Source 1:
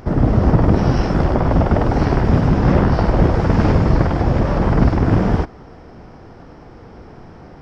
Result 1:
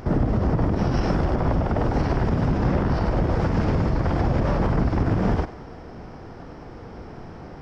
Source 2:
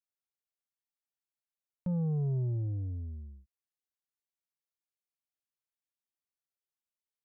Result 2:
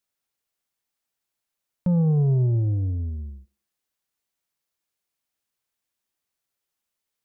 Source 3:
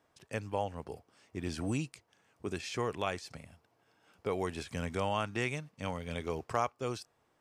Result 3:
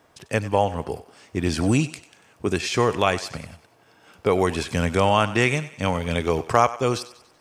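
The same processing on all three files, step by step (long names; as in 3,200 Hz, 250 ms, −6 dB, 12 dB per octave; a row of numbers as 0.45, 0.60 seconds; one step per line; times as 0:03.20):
downward compressor, threshold −15 dBFS
brickwall limiter −13 dBFS
feedback echo with a high-pass in the loop 95 ms, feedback 48%, high-pass 420 Hz, level −15 dB
loudness normalisation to −23 LKFS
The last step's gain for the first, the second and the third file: 0.0, +11.0, +14.0 decibels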